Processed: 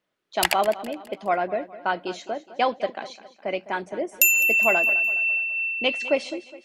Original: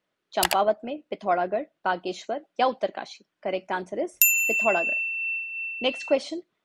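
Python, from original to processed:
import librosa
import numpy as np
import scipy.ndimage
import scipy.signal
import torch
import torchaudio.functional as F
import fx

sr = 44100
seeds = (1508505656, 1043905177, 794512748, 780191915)

p1 = fx.dynamic_eq(x, sr, hz=2200.0, q=2.4, threshold_db=-43.0, ratio=4.0, max_db=7)
y = p1 + fx.echo_feedback(p1, sr, ms=207, feedback_pct=45, wet_db=-16.0, dry=0)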